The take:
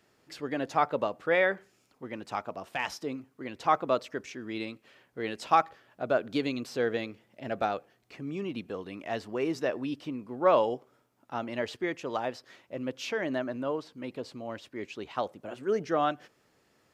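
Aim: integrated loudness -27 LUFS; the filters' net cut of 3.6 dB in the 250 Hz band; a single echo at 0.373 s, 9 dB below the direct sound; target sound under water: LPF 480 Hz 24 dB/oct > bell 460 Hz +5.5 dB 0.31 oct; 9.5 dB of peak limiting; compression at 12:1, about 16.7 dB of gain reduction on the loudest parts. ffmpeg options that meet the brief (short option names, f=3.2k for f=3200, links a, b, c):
-af "equalizer=f=250:t=o:g=-5,acompressor=threshold=-35dB:ratio=12,alimiter=level_in=7.5dB:limit=-24dB:level=0:latency=1,volume=-7.5dB,lowpass=f=480:w=0.5412,lowpass=f=480:w=1.3066,equalizer=f=460:t=o:w=0.31:g=5.5,aecho=1:1:373:0.355,volume=18.5dB"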